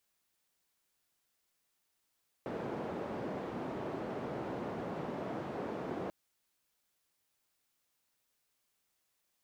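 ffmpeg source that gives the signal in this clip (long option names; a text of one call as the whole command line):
ffmpeg -f lavfi -i "anoisesrc=color=white:duration=3.64:sample_rate=44100:seed=1,highpass=frequency=150,lowpass=frequency=550,volume=-17.8dB" out.wav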